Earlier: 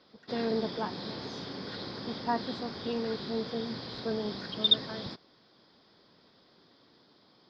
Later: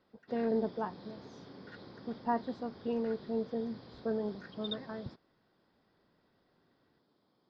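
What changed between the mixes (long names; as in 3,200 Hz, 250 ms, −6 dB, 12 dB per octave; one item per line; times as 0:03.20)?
background −9.5 dB
master: add high-shelf EQ 2,200 Hz −11.5 dB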